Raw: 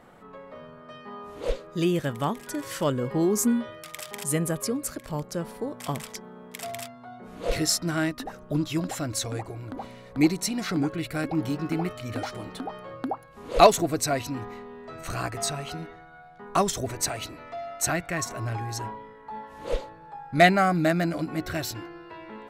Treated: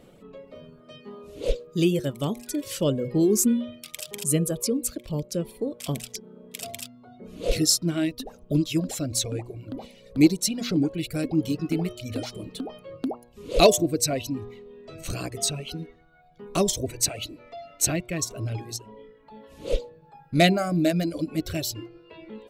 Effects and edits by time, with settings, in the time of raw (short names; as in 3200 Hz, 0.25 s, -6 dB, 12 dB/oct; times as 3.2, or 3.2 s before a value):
18.76–19.49 compressor 4:1, threshold -37 dBFS
whole clip: reverb removal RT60 1 s; band shelf 1200 Hz -12.5 dB; de-hum 120.3 Hz, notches 9; gain +4 dB